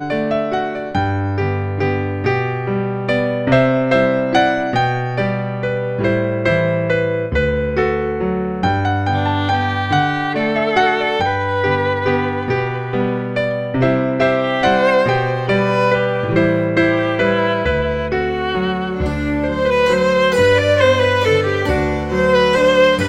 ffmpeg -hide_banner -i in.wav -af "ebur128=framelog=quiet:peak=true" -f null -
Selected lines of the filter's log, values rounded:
Integrated loudness:
  I:         -16.7 LUFS
  Threshold: -26.7 LUFS
Loudness range:
  LRA:         3.0 LU
  Threshold: -36.8 LUFS
  LRA low:   -18.0 LUFS
  LRA high:  -15.0 LUFS
True peak:
  Peak:       -1.1 dBFS